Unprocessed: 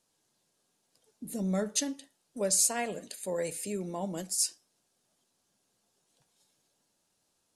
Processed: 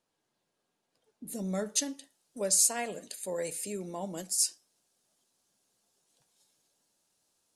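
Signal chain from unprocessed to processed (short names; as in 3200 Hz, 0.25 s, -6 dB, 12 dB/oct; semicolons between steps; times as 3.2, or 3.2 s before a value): tone controls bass -3 dB, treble -10 dB, from 1.26 s treble +3 dB; gain -1.5 dB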